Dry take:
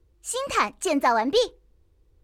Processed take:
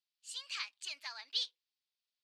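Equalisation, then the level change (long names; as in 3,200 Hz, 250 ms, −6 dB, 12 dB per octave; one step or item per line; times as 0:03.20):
four-pole ladder band-pass 5,400 Hz, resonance 60%
high shelf with overshoot 4,100 Hz −11.5 dB, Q 1.5
+9.0 dB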